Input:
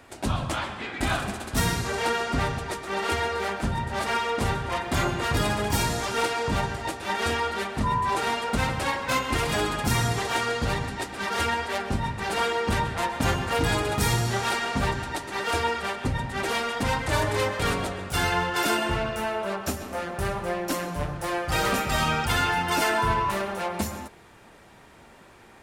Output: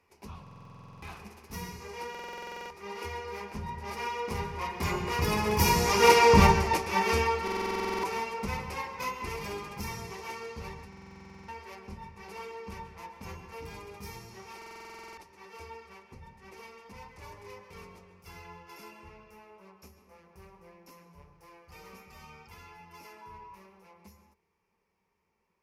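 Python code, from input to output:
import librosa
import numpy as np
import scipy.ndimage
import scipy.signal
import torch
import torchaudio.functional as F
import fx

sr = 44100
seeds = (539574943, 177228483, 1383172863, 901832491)

y = fx.doppler_pass(x, sr, speed_mps=8, closest_m=2.6, pass_at_s=6.32)
y = fx.ripple_eq(y, sr, per_octave=0.82, db=11)
y = fx.buffer_glitch(y, sr, at_s=(0.42, 2.1, 7.43, 10.88, 14.57), block=2048, repeats=12)
y = y * 10.0 ** (6.0 / 20.0)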